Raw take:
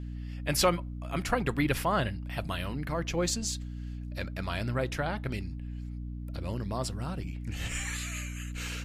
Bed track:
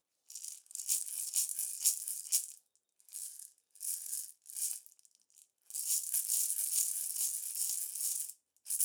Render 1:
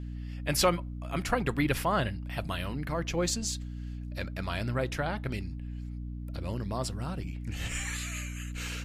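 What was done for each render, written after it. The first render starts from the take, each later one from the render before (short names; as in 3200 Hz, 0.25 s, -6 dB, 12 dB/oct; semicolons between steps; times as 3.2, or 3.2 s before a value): nothing audible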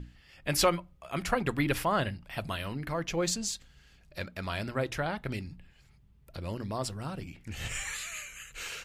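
notches 60/120/180/240/300 Hz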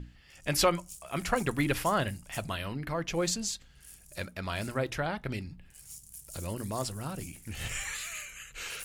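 add bed track -14 dB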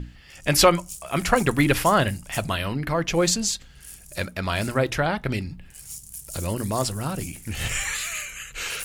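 gain +9 dB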